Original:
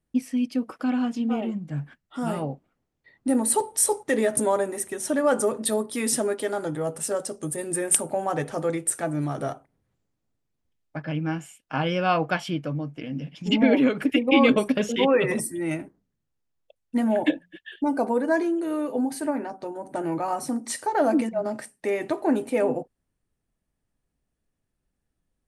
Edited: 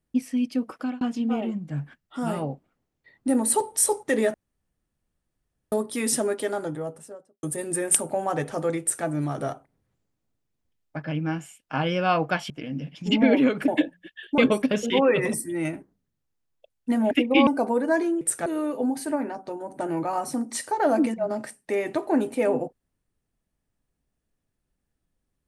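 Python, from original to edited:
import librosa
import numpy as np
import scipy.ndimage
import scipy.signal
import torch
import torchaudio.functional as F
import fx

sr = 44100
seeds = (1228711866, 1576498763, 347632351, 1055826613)

y = fx.studio_fade_out(x, sr, start_s=6.43, length_s=1.0)
y = fx.edit(y, sr, fx.fade_out_span(start_s=0.71, length_s=0.3, curve='qsin'),
    fx.room_tone_fill(start_s=4.34, length_s=1.38),
    fx.duplicate(start_s=8.81, length_s=0.25, to_s=18.61),
    fx.cut(start_s=12.5, length_s=0.4),
    fx.swap(start_s=14.08, length_s=0.36, other_s=17.17, other_length_s=0.7), tone=tone)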